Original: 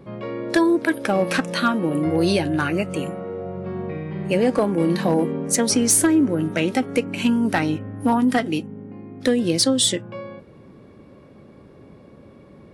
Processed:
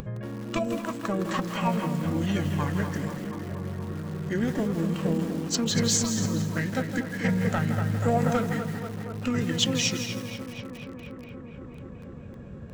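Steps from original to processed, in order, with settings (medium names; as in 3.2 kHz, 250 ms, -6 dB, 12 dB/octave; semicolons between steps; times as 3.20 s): bass shelf 400 Hz +10 dB; small resonant body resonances 220/450/2500 Hz, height 9 dB, ringing for 45 ms; on a send: tape echo 239 ms, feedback 83%, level -7 dB, low-pass 4.1 kHz; on the sum: upward compressor, threshold -14 dBFS; formant shift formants -6 st; peaking EQ 230 Hz -14.5 dB 1.7 oct; bit-crushed delay 164 ms, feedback 35%, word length 5-bit, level -8.5 dB; trim -7 dB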